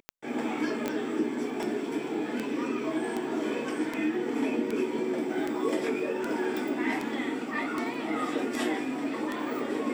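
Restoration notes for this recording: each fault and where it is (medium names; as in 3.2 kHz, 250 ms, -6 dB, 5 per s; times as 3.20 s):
tick 78 rpm -18 dBFS
0.88 s: pop -16 dBFS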